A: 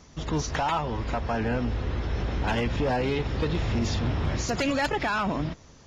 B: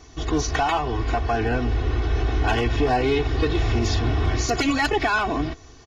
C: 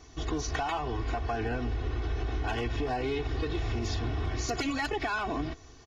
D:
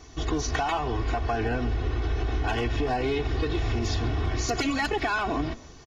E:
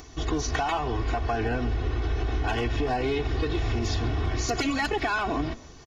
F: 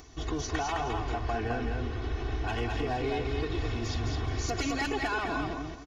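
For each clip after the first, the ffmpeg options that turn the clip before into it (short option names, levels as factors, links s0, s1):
-af "aecho=1:1:2.7:0.95,volume=1.33"
-af "acompressor=threshold=0.0794:ratio=6,volume=0.531"
-filter_complex "[0:a]asplit=4[s0][s1][s2][s3];[s1]adelay=136,afreqshift=-64,volume=0.106[s4];[s2]adelay=272,afreqshift=-128,volume=0.0372[s5];[s3]adelay=408,afreqshift=-192,volume=0.013[s6];[s0][s4][s5][s6]amix=inputs=4:normalize=0,volume=1.68"
-af "acompressor=mode=upward:threshold=0.00708:ratio=2.5"
-af "aecho=1:1:211|422|633|844:0.631|0.17|0.046|0.0124,volume=0.531"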